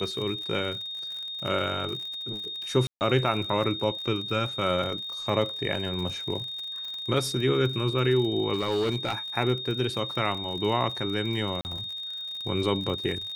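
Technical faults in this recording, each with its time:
crackle 55 per s -34 dBFS
whine 3.7 kHz -33 dBFS
2.87–3.01 s: dropout 139 ms
8.54–9.14 s: clipped -22 dBFS
11.61–11.65 s: dropout 39 ms

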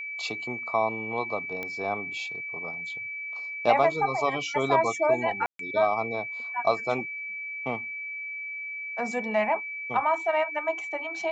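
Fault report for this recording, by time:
whine 2.3 kHz -33 dBFS
1.63 s: pop -20 dBFS
5.46–5.59 s: dropout 133 ms

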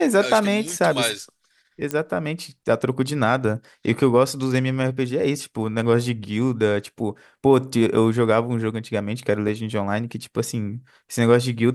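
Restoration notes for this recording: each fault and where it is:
1.91 s: pop -10 dBFS
9.48–9.49 s: dropout 5.2 ms

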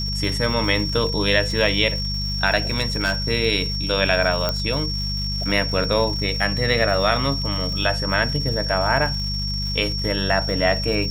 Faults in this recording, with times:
crackle 280 per s -31 dBFS
hum 50 Hz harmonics 4 -27 dBFS
whine 5.5 kHz -26 dBFS
2.70–3.12 s: clipped -15 dBFS
4.49 s: pop -7 dBFS

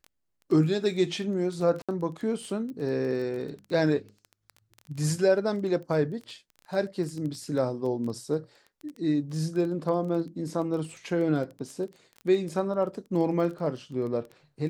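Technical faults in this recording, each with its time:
crackle 16 per s -34 dBFS
1.82–1.89 s: dropout 66 ms

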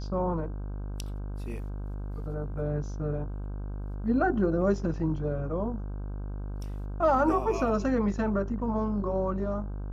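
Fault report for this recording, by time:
buzz 50 Hz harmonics 32 -35 dBFS

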